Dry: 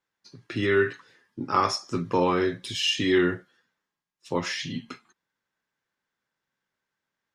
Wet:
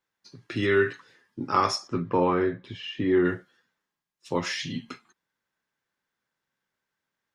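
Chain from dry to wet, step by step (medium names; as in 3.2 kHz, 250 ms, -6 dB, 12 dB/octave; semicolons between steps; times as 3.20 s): 1.87–3.24 s: low-pass 2.5 kHz -> 1.2 kHz 12 dB/octave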